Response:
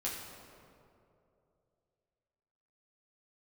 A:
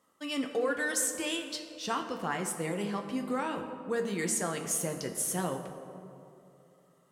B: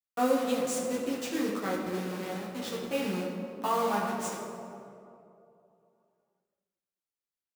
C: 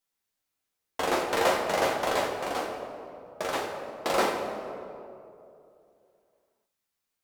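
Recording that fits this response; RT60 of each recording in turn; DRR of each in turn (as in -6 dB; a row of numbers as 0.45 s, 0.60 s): B; 2.7 s, 2.7 s, 2.7 s; 3.5 dB, -6.0 dB, -1.5 dB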